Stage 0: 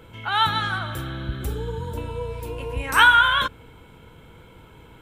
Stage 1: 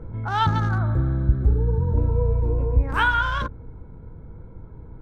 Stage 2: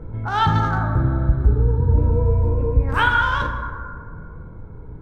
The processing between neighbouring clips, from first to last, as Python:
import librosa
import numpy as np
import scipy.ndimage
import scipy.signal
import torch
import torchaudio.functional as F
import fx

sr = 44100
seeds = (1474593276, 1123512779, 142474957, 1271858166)

y1 = fx.wiener(x, sr, points=15)
y1 = fx.tilt_eq(y1, sr, slope=-3.5)
y1 = fx.rider(y1, sr, range_db=3, speed_s=0.5)
y1 = F.gain(torch.from_numpy(y1), -2.0).numpy()
y2 = fx.rev_plate(y1, sr, seeds[0], rt60_s=2.1, hf_ratio=0.35, predelay_ms=0, drr_db=3.5)
y2 = F.gain(torch.from_numpy(y2), 2.0).numpy()